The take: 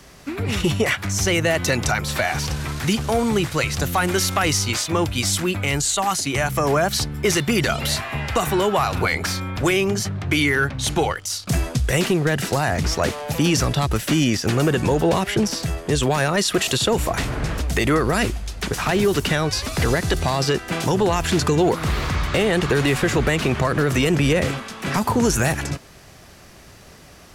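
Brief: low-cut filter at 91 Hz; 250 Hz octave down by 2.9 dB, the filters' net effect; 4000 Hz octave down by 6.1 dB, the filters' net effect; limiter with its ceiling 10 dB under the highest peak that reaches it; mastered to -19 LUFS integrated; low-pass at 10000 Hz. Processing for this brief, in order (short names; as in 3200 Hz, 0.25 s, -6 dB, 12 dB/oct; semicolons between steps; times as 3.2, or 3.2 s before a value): HPF 91 Hz; LPF 10000 Hz; bell 250 Hz -4 dB; bell 4000 Hz -8.5 dB; gain +9 dB; limiter -10 dBFS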